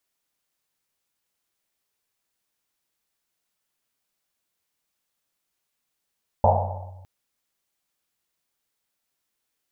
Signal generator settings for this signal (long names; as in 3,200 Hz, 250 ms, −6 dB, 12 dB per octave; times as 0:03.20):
drum after Risset length 0.61 s, pitch 93 Hz, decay 1.55 s, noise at 720 Hz, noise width 360 Hz, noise 60%